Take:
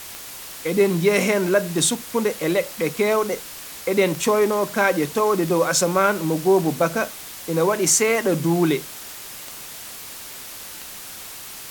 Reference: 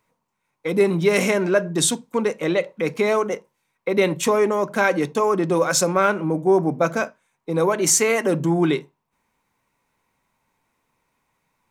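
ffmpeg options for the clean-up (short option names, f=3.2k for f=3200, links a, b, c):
-af "adeclick=t=4,afwtdn=0.016"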